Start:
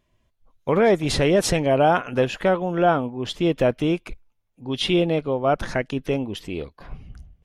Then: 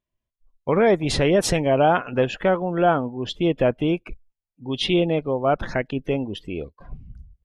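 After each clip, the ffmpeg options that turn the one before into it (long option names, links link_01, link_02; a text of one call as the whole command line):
ffmpeg -i in.wav -af "afftdn=noise_reduction=18:noise_floor=-40" out.wav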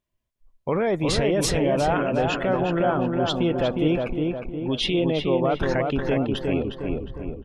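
ffmpeg -i in.wav -filter_complex "[0:a]alimiter=limit=-18dB:level=0:latency=1:release=37,asplit=2[link_01][link_02];[link_02]adelay=359,lowpass=frequency=2100:poles=1,volume=-3dB,asplit=2[link_03][link_04];[link_04]adelay=359,lowpass=frequency=2100:poles=1,volume=0.52,asplit=2[link_05][link_06];[link_06]adelay=359,lowpass=frequency=2100:poles=1,volume=0.52,asplit=2[link_07][link_08];[link_08]adelay=359,lowpass=frequency=2100:poles=1,volume=0.52,asplit=2[link_09][link_10];[link_10]adelay=359,lowpass=frequency=2100:poles=1,volume=0.52,asplit=2[link_11][link_12];[link_12]adelay=359,lowpass=frequency=2100:poles=1,volume=0.52,asplit=2[link_13][link_14];[link_14]adelay=359,lowpass=frequency=2100:poles=1,volume=0.52[link_15];[link_03][link_05][link_07][link_09][link_11][link_13][link_15]amix=inputs=7:normalize=0[link_16];[link_01][link_16]amix=inputs=2:normalize=0,volume=3dB" out.wav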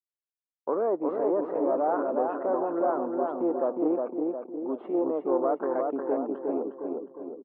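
ffmpeg -i in.wav -af "aeval=exprs='(tanh(5.62*val(0)+0.55)-tanh(0.55))/5.62':channel_layout=same,anlmdn=0.0398,asuperpass=centerf=580:order=8:qfactor=0.61" out.wav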